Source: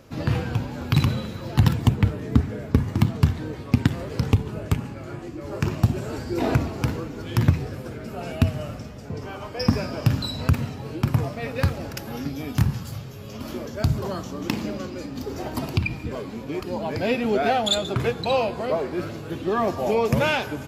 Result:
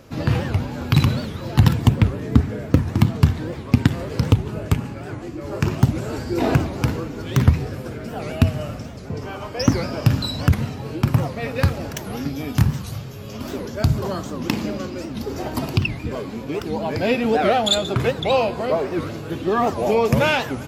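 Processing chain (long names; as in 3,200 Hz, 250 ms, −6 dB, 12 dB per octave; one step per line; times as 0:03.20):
wow of a warped record 78 rpm, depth 250 cents
level +3.5 dB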